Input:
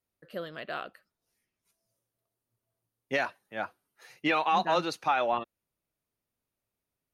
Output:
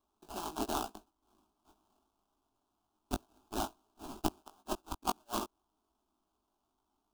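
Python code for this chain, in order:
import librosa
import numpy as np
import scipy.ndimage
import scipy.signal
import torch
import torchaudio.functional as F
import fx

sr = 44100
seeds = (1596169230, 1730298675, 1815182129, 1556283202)

y = fx.high_shelf_res(x, sr, hz=1600.0, db=12.5, q=1.5)
y = fx.gate_flip(y, sr, shuts_db=-11.0, range_db=-40)
y = fx.sample_hold(y, sr, seeds[0], rate_hz=2200.0, jitter_pct=20)
y = fx.fixed_phaser(y, sr, hz=510.0, stages=6)
y = fx.doubler(y, sr, ms=19.0, db=-6.5)
y = F.gain(torch.from_numpy(y), -2.5).numpy()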